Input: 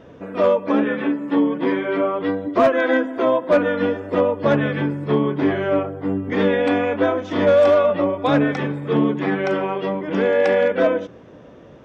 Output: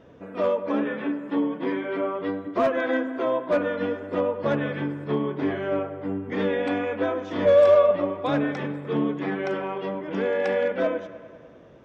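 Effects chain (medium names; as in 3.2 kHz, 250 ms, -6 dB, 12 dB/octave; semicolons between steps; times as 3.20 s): 7.45–7.91 s: comb 1.8 ms, depth 73%; on a send: feedback echo behind a low-pass 100 ms, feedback 70%, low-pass 2.7 kHz, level -14 dB; on the sum: trim -7 dB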